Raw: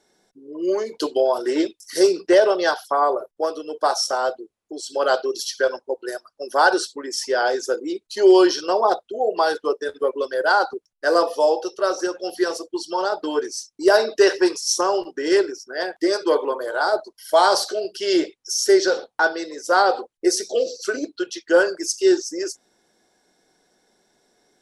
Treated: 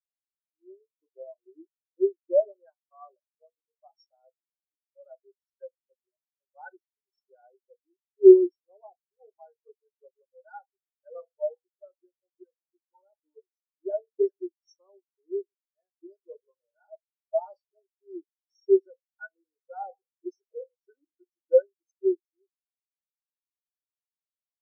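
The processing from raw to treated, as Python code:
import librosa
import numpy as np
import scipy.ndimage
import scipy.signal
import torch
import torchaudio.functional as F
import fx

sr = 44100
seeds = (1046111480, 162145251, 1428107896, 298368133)

y = fx.zero_step(x, sr, step_db=-26.0, at=(19.31, 21.62))
y = fx.bass_treble(y, sr, bass_db=-9, treble_db=3)
y = fx.spectral_expand(y, sr, expansion=4.0)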